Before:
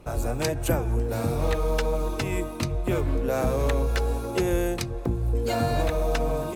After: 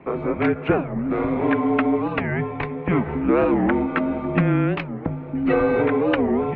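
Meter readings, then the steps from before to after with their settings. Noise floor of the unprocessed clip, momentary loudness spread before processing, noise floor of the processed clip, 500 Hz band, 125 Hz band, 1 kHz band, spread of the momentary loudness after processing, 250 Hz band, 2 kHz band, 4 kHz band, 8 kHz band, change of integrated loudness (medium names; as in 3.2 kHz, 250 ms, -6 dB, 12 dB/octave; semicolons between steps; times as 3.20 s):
-32 dBFS, 4 LU, -33 dBFS, +4.5 dB, +1.0 dB, +6.0 dB, 7 LU, +10.5 dB, +7.5 dB, no reading, under -35 dB, +5.0 dB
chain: mistuned SSB -200 Hz 360–2700 Hz; warped record 45 rpm, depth 250 cents; trim +9 dB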